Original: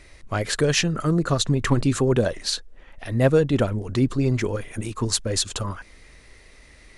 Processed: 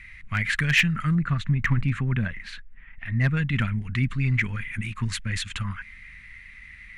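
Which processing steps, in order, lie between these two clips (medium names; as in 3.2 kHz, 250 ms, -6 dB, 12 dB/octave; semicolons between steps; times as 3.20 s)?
FFT filter 210 Hz 0 dB, 320 Hz -18 dB, 520 Hz -25 dB, 2.1 kHz +9 dB, 5 kHz -19 dB; hard clipper -14 dBFS, distortion -28 dB; treble shelf 3 kHz +8.5 dB, from 1.15 s -6 dB, from 3.37 s +8 dB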